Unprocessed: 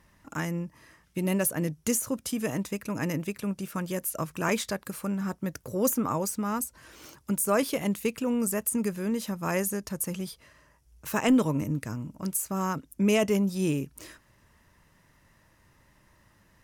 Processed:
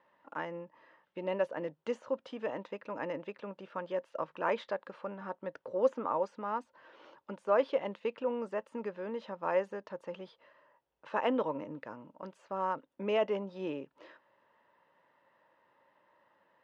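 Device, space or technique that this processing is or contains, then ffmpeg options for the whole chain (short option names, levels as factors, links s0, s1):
phone earpiece: -af "highpass=380,equalizer=f=540:t=q:w=4:g=9,equalizer=f=910:t=q:w=4:g=7,equalizer=f=2300:t=q:w=4:g=-6,lowpass=f=3200:w=0.5412,lowpass=f=3200:w=1.3066,volume=0.531"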